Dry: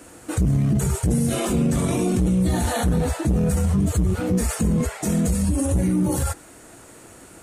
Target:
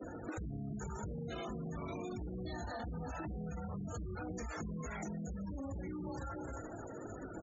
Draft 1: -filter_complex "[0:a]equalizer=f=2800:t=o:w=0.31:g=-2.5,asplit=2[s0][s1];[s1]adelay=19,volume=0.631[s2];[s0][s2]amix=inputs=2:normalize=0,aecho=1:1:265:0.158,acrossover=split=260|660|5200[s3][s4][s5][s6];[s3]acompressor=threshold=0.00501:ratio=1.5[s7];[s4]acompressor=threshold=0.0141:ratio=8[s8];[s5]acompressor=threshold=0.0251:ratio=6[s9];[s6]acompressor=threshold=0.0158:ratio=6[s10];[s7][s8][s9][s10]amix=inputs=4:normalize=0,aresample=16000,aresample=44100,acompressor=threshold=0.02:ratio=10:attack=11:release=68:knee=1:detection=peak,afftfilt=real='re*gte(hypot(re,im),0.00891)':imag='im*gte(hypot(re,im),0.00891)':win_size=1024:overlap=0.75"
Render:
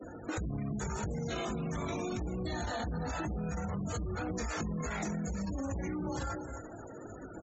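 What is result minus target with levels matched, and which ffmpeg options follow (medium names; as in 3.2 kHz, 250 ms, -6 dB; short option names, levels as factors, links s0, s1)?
compression: peak gain reduction -6 dB
-filter_complex "[0:a]equalizer=f=2800:t=o:w=0.31:g=-2.5,asplit=2[s0][s1];[s1]adelay=19,volume=0.631[s2];[s0][s2]amix=inputs=2:normalize=0,aecho=1:1:265:0.158,acrossover=split=260|660|5200[s3][s4][s5][s6];[s3]acompressor=threshold=0.00501:ratio=1.5[s7];[s4]acompressor=threshold=0.0141:ratio=8[s8];[s5]acompressor=threshold=0.0251:ratio=6[s9];[s6]acompressor=threshold=0.0158:ratio=6[s10];[s7][s8][s9][s10]amix=inputs=4:normalize=0,aresample=16000,aresample=44100,acompressor=threshold=0.00944:ratio=10:attack=11:release=68:knee=1:detection=peak,afftfilt=real='re*gte(hypot(re,im),0.00891)':imag='im*gte(hypot(re,im),0.00891)':win_size=1024:overlap=0.75"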